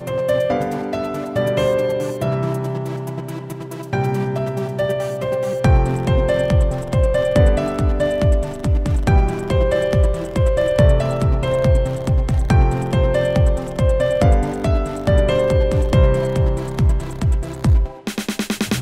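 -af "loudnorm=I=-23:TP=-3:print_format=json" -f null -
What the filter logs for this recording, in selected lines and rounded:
"input_i" : "-18.8",
"input_tp" : "-2.2",
"input_lra" : "3.7",
"input_thresh" : "-28.9",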